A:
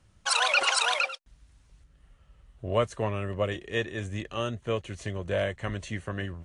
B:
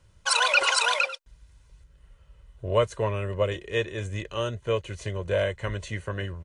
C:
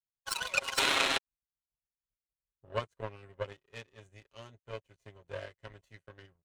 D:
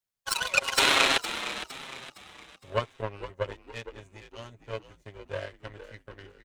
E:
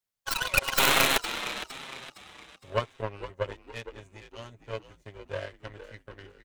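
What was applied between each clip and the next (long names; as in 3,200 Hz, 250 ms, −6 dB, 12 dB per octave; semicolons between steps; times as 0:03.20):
comb filter 2 ms, depth 49%; level +1 dB
sound drawn into the spectrogram noise, 0:00.77–0:01.18, 260–4,300 Hz −19 dBFS; comb filter 7.4 ms, depth 78%; power curve on the samples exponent 2; level −4 dB
echo with shifted repeats 461 ms, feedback 40%, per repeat −70 Hz, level −12 dB; level +6 dB
stylus tracing distortion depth 0.23 ms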